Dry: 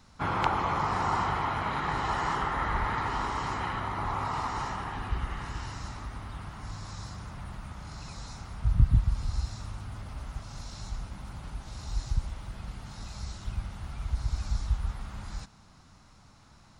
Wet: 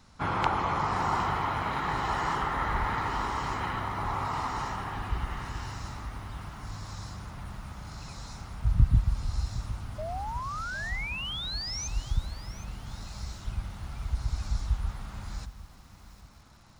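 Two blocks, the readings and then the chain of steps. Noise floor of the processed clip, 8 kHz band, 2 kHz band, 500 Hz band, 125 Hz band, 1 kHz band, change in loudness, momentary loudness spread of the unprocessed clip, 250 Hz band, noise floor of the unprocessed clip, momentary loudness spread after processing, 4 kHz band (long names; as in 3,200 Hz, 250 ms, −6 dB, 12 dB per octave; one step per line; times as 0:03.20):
−52 dBFS, +4.0 dB, +1.5 dB, +0.5 dB, 0.0 dB, +0.5 dB, +0.5 dB, 14 LU, 0.0 dB, −56 dBFS, 14 LU, +4.5 dB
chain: sound drawn into the spectrogram rise, 0:09.98–0:11.88, 600–6,400 Hz −36 dBFS
feedback echo at a low word length 760 ms, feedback 35%, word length 8 bits, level −14.5 dB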